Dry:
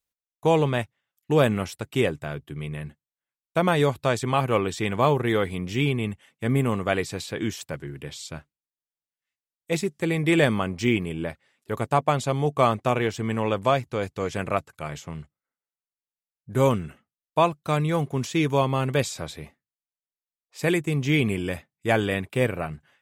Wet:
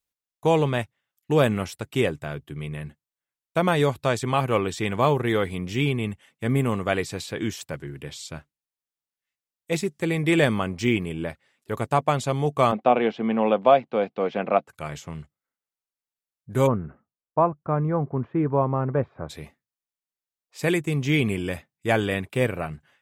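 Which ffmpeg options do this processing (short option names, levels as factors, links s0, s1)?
-filter_complex "[0:a]asplit=3[s0][s1][s2];[s0]afade=t=out:st=12.71:d=0.02[s3];[s1]highpass=f=180:w=0.5412,highpass=f=180:w=1.3066,equalizer=f=220:t=q:w=4:g=6,equalizer=f=520:t=q:w=4:g=5,equalizer=f=740:t=q:w=4:g=9,equalizer=f=1800:t=q:w=4:g=-4,lowpass=f=3600:w=0.5412,lowpass=f=3600:w=1.3066,afade=t=in:st=12.71:d=0.02,afade=t=out:st=14.67:d=0.02[s4];[s2]afade=t=in:st=14.67:d=0.02[s5];[s3][s4][s5]amix=inputs=3:normalize=0,asplit=3[s6][s7][s8];[s6]afade=t=out:st=16.66:d=0.02[s9];[s7]lowpass=f=1400:w=0.5412,lowpass=f=1400:w=1.3066,afade=t=in:st=16.66:d=0.02,afade=t=out:st=19.29:d=0.02[s10];[s8]afade=t=in:st=19.29:d=0.02[s11];[s9][s10][s11]amix=inputs=3:normalize=0"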